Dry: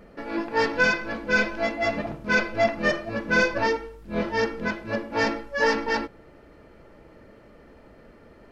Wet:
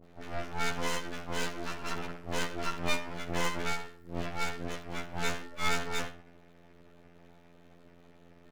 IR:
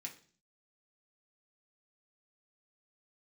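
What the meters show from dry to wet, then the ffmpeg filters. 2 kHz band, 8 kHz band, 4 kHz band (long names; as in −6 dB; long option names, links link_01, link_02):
−13.5 dB, +2.0 dB, −4.0 dB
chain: -filter_complex "[0:a]asplit=2[link_01][link_02];[link_02]adelay=67,lowpass=frequency=1500:poles=1,volume=-11dB,asplit=2[link_03][link_04];[link_04]adelay=67,lowpass=frequency=1500:poles=1,volume=0.4,asplit=2[link_05][link_06];[link_06]adelay=67,lowpass=frequency=1500:poles=1,volume=0.4,asplit=2[link_07][link_08];[link_08]adelay=67,lowpass=frequency=1500:poles=1,volume=0.4[link_09];[link_03][link_05][link_07][link_09]amix=inputs=4:normalize=0[link_10];[link_01][link_10]amix=inputs=2:normalize=0,afftfilt=real='hypot(re,im)*cos(PI*b)':imag='0':win_size=2048:overlap=0.75,acrossover=split=610[link_11][link_12];[link_12]adelay=40[link_13];[link_11][link_13]amix=inputs=2:normalize=0,aeval=exprs='abs(val(0))':channel_layout=same,volume=-1.5dB"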